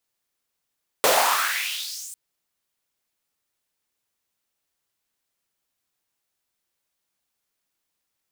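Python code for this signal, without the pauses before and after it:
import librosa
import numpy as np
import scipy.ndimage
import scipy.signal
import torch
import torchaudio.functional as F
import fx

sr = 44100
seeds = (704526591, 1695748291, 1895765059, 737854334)

y = fx.riser_noise(sr, seeds[0], length_s=1.1, colour='pink', kind='highpass', start_hz=500.0, end_hz=8500.0, q=3.5, swell_db=-20, law='exponential')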